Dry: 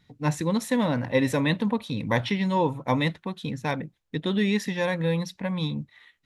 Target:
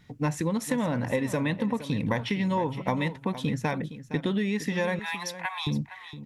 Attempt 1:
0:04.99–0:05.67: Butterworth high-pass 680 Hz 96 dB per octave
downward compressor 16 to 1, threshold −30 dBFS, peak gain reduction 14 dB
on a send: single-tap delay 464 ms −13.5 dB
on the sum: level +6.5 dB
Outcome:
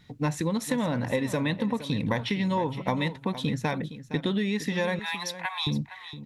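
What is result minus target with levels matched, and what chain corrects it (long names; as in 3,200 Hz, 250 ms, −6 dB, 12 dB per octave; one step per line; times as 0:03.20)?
4,000 Hz band +3.5 dB
0:04.99–0:05.67: Butterworth high-pass 680 Hz 96 dB per octave
downward compressor 16 to 1, threshold −30 dBFS, peak gain reduction 14 dB
parametric band 3,900 Hz −6.5 dB 0.32 octaves
on a send: single-tap delay 464 ms −13.5 dB
on the sum: level +6.5 dB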